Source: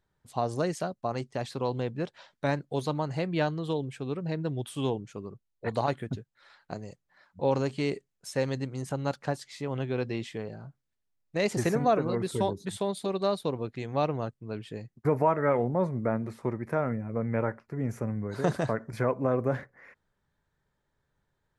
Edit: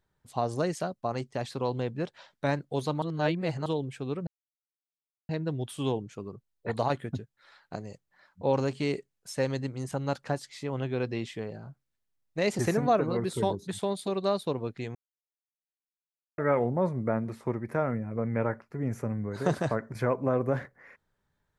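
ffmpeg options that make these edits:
-filter_complex "[0:a]asplit=6[s0][s1][s2][s3][s4][s5];[s0]atrim=end=3.022[s6];[s1]atrim=start=3.018:end=3.662,asetpts=PTS-STARTPTS,areverse[s7];[s2]atrim=start=3.658:end=4.27,asetpts=PTS-STARTPTS,afade=t=out:st=0.608:d=0.004:c=hsin,apad=pad_dur=1.02[s8];[s3]atrim=start=4.27:end=13.93,asetpts=PTS-STARTPTS,afade=t=in:d=0.004:c=hsin,afade=t=out:st=9.656:d=0.004:c=hsin[s9];[s4]atrim=start=13.93:end=15.36,asetpts=PTS-STARTPTS,volume=0[s10];[s5]atrim=start=15.36,asetpts=PTS-STARTPTS,afade=t=in:d=0.004:c=hsin[s11];[s6][s7]acrossfade=d=0.004:c1=hsin:c2=hsin[s12];[s8][s9][s10][s11]concat=n=4:v=0:a=1[s13];[s12][s13]acrossfade=d=0.004:c1=hsin:c2=hsin"

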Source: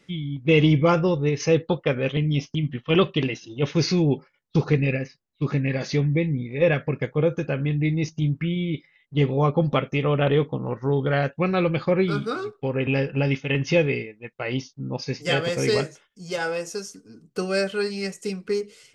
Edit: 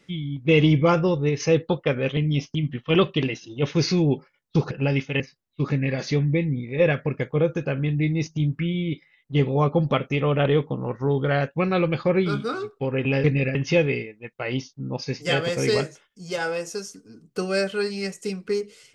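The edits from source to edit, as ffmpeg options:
-filter_complex "[0:a]asplit=5[s0][s1][s2][s3][s4];[s0]atrim=end=4.712[s5];[s1]atrim=start=13.058:end=13.552[s6];[s2]atrim=start=5.018:end=13.062[s7];[s3]atrim=start=4.708:end=5.022[s8];[s4]atrim=start=13.548[s9];[s5][s6]acrossfade=d=0.004:c1=hsin:c2=hsin[s10];[s10][s7]acrossfade=d=0.004:c1=hsin:c2=hsin[s11];[s11][s8]acrossfade=d=0.004:c1=hsin:c2=hsin[s12];[s12][s9]acrossfade=d=0.004:c1=hsin:c2=hsin"

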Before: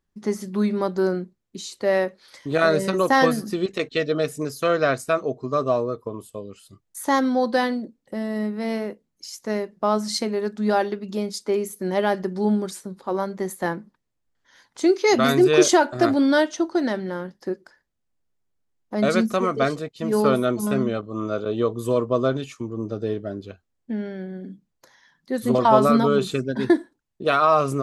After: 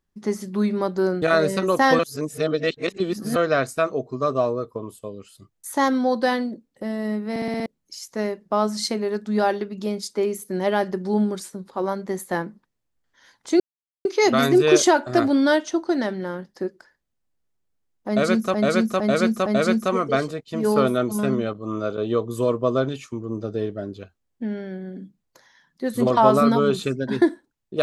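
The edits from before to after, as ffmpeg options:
-filter_complex "[0:a]asplit=14[s0][s1][s2][s3][s4][s5][s6][s7][s8][s9][s10][s11][s12][s13];[s0]atrim=end=1.222[s14];[s1]atrim=start=2.528:end=3.302[s15];[s2]atrim=start=3.298:end=4.672,asetpts=PTS-STARTPTS,areverse[s16];[s3]atrim=start=4.668:end=8.672[s17];[s4]atrim=start=8.608:end=8.672[s18];[s5]atrim=start=8.608:end=8.672[s19];[s6]atrim=start=8.608:end=8.672[s20];[s7]atrim=start=8.608:end=8.672[s21];[s8]atrim=start=8.608:end=8.672[s22];[s9]atrim=start=8.968:end=14.91,asetpts=PTS-STARTPTS,afade=t=out:st=5.938:d=0.004:c=hsin,apad=pad_dur=0.45[s23];[s10]atrim=start=14.91:end=19.402,asetpts=PTS-STARTPTS,afade=t=in:d=0.004:c=hsin[s24];[s11]atrim=start=18.938:end=19.402[s25];[s12]atrim=start=18.938:end=19.402[s26];[s13]atrim=start=18.938[s27];[s14][s15]acrossfade=d=0.004:c1=hsin:c2=hsin[s28];[s28][s16]acrossfade=d=0.004:c1=hsin:c2=hsin[s29];[s29][s17]acrossfade=d=0.004:c1=hsin:c2=hsin[s30];[s30][s18]acrossfade=d=0.004:c1=hsin:c2=hsin[s31];[s31][s19]acrossfade=d=0.004:c1=hsin:c2=hsin[s32];[s32][s20]acrossfade=d=0.004:c1=hsin:c2=hsin[s33];[s33][s21]acrossfade=d=0.004:c1=hsin:c2=hsin[s34];[s34][s22]acrossfade=d=0.004:c1=hsin:c2=hsin[s35];[s23][s24]concat=n=2:v=0:a=1[s36];[s35][s36]acrossfade=d=0.004:c1=hsin:c2=hsin[s37];[s37][s25]acrossfade=d=0.004:c1=hsin:c2=hsin[s38];[s38][s26]acrossfade=d=0.004:c1=hsin:c2=hsin[s39];[s39][s27]acrossfade=d=0.004:c1=hsin:c2=hsin"

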